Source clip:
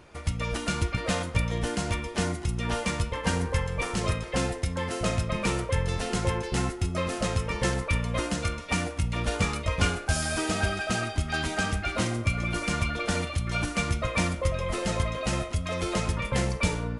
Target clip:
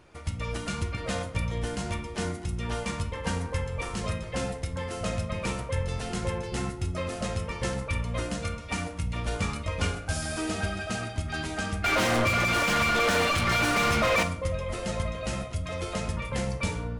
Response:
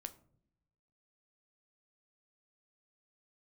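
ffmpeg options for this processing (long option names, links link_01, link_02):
-filter_complex "[0:a]asettb=1/sr,asplit=3[link_01][link_02][link_03];[link_01]atrim=end=11.844[link_04];[link_02]atrim=start=11.84:end=14.23,asetpts=PTS-STARTPTS,afade=type=in:duration=0.004:curve=qsin,afade=type=out:start_time=2.386:duration=0.004:curve=qsin,asplit=2[link_05][link_06];[link_06]highpass=frequency=720:poles=1,volume=36dB,asoftclip=type=tanh:threshold=-12.5dB[link_07];[link_05][link_07]amix=inputs=2:normalize=0,lowpass=frequency=2700:poles=1,volume=-6dB[link_08];[link_03]atrim=start=14.226[link_09];[link_04][link_08]acrossfade=duration=0.004:curve1=hsin:curve2=qsin[link_10];[link_10][link_09]acrossfade=duration=0.004:curve1=qsin:curve2=hsin[link_11];[1:a]atrim=start_sample=2205,asetrate=42336,aresample=44100[link_12];[link_11][link_12]afir=irnorm=-1:irlink=0"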